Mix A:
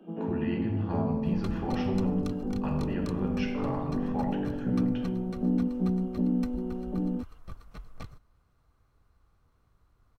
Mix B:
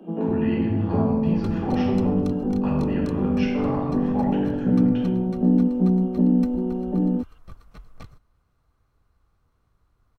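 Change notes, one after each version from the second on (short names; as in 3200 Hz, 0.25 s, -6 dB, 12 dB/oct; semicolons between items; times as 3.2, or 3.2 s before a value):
speech: send +7.5 dB; first sound +8.5 dB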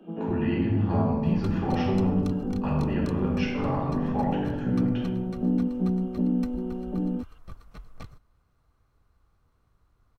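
first sound -6.5 dB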